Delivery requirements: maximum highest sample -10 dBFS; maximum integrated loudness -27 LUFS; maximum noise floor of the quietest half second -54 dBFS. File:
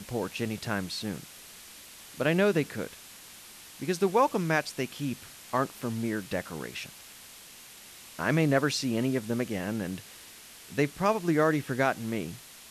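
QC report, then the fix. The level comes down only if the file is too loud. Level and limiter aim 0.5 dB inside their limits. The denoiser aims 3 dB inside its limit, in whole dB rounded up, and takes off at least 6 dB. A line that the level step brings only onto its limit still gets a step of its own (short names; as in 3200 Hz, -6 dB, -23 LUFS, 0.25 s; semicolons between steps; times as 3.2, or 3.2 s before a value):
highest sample -12.0 dBFS: OK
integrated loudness -29.5 LUFS: OK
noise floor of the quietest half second -49 dBFS: fail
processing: denoiser 8 dB, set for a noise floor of -49 dBFS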